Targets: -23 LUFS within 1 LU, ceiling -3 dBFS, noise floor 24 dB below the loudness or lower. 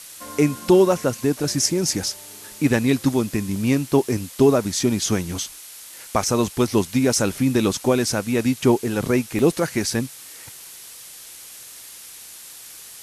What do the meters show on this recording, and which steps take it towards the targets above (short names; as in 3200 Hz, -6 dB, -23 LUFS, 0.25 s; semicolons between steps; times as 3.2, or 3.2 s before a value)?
dropouts 5; longest dropout 1.3 ms; noise floor -41 dBFS; noise floor target -45 dBFS; loudness -21.0 LUFS; peak -5.5 dBFS; loudness target -23.0 LUFS
-> interpolate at 0.28/0.92/3.56/7.13/9.39, 1.3 ms; noise print and reduce 6 dB; gain -2 dB